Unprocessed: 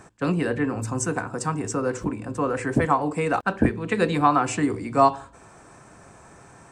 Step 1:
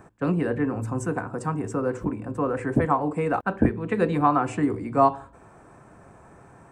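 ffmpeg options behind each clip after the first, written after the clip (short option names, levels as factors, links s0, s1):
-af "equalizer=f=5600:w=0.51:g=-14"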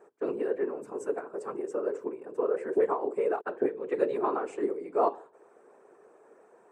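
-af "afftfilt=real='hypot(re,im)*cos(2*PI*random(0))':imag='hypot(re,im)*sin(2*PI*random(1))':win_size=512:overlap=0.75,highpass=f=420:t=q:w=4.9,volume=0.531"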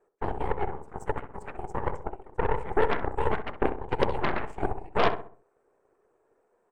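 -filter_complex "[0:a]aeval=exprs='0.282*(cos(1*acos(clip(val(0)/0.282,-1,1)))-cos(1*PI/2))+0.0316*(cos(3*acos(clip(val(0)/0.282,-1,1)))-cos(3*PI/2))+0.00398*(cos(5*acos(clip(val(0)/0.282,-1,1)))-cos(5*PI/2))+0.0224*(cos(7*acos(clip(val(0)/0.282,-1,1)))-cos(7*PI/2))+0.0447*(cos(8*acos(clip(val(0)/0.282,-1,1)))-cos(8*PI/2))':c=same,asplit=2[s0][s1];[s1]adelay=65,lowpass=f=1400:p=1,volume=0.376,asplit=2[s2][s3];[s3]adelay=65,lowpass=f=1400:p=1,volume=0.42,asplit=2[s4][s5];[s5]adelay=65,lowpass=f=1400:p=1,volume=0.42,asplit=2[s6][s7];[s7]adelay=65,lowpass=f=1400:p=1,volume=0.42,asplit=2[s8][s9];[s9]adelay=65,lowpass=f=1400:p=1,volume=0.42[s10];[s0][s2][s4][s6][s8][s10]amix=inputs=6:normalize=0,volume=1.33"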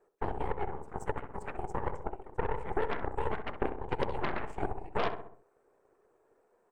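-af "acompressor=threshold=0.0355:ratio=2.5"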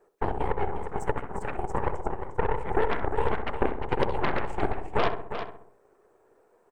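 -af "aecho=1:1:354:0.355,volume=2"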